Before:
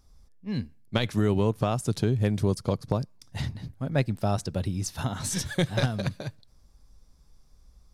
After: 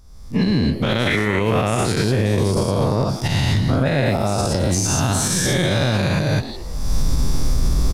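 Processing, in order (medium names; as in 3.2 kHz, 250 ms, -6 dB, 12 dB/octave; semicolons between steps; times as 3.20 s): every event in the spectrogram widened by 240 ms; recorder AGC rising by 39 dB/s; 1.07–2.04 s: peaking EQ 2 kHz +15 dB 0.71 oct; frequency-shifting echo 111 ms, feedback 51%, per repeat +120 Hz, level -15.5 dB; loudness maximiser +11.5 dB; trim -8 dB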